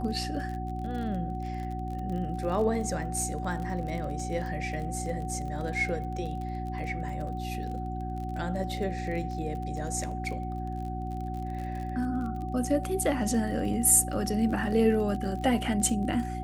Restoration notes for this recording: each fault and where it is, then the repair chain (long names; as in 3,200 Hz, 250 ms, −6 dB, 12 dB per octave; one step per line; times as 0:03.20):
surface crackle 34 per second −36 dBFS
mains hum 60 Hz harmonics 6 −35 dBFS
whistle 750 Hz −37 dBFS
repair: click removal
notch filter 750 Hz, Q 30
hum removal 60 Hz, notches 6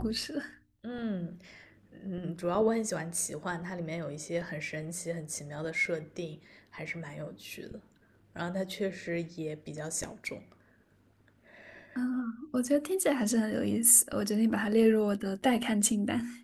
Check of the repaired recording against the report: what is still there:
none of them is left